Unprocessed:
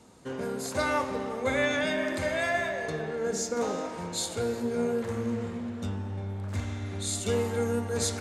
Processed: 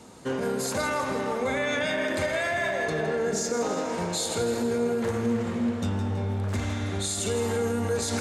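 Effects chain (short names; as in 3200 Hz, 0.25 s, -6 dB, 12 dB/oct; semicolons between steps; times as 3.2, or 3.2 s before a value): low shelf 110 Hz -4 dB; limiter -27 dBFS, peak gain reduction 11 dB; split-band echo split 720 Hz, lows 0.344 s, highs 0.163 s, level -10 dB; gain +7.5 dB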